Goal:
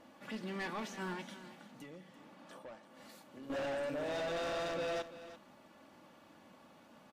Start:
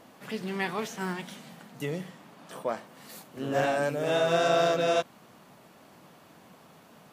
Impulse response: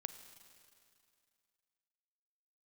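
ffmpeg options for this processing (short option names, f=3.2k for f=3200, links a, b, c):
-filter_complex "[0:a]aecho=1:1:3.5:0.5,volume=29dB,asoftclip=hard,volume=-29dB,asettb=1/sr,asplit=3[a][b][c];[a]atrim=end=1.334[d];[b]atrim=start=1.33:end=3.5,asetpts=PTS-STARTPTS,afade=t=in:d=0.004:c=qsin,afade=t=out:st=2.166:d=0.004:c=qsin,acompressor=threshold=-44dB:ratio=4[e];[c]atrim=start=3.496[f];[d][e]acrossfade=d=0.004:c1=hsin:c2=qsin[g];[g][f]acrossfade=d=0.004:c1=qsin:c2=hsin,highshelf=f=8.3k:g=-11.5,aecho=1:1:338:0.2,volume=-6.5dB"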